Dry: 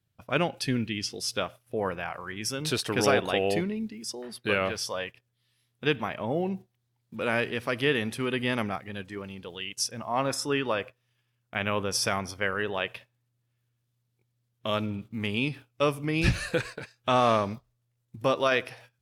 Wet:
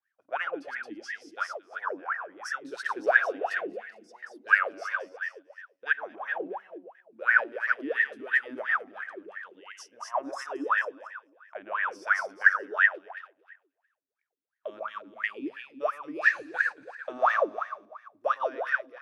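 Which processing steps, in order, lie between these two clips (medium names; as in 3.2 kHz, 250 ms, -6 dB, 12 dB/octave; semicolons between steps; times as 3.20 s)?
chunks repeated in reverse 226 ms, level -12 dB; fifteen-band graphic EQ 630 Hz +4 dB, 1.6 kHz +10 dB, 6.3 kHz +6 dB; echo whose repeats swap between lows and highs 112 ms, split 1 kHz, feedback 52%, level -2 dB; wah-wah 2.9 Hz 270–1900 Hz, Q 19; tilt EQ +4.5 dB/octave; trim +8.5 dB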